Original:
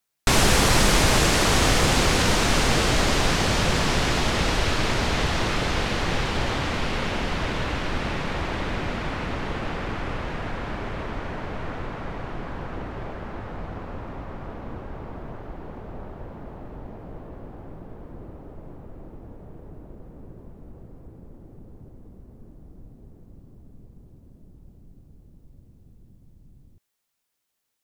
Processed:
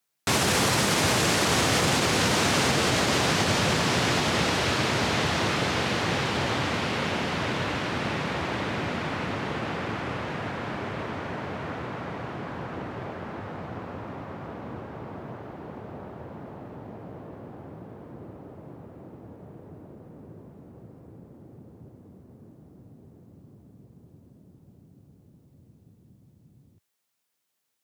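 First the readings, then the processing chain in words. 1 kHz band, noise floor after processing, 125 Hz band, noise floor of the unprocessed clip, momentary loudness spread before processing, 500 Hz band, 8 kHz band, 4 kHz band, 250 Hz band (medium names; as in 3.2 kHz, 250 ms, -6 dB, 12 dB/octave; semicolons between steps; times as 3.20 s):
-1.0 dB, -60 dBFS, -3.0 dB, -54 dBFS, 22 LU, -1.0 dB, -2.0 dB, -1.5 dB, -1.0 dB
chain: high-pass 93 Hz 24 dB/octave; peak limiter -13.5 dBFS, peak gain reduction 6 dB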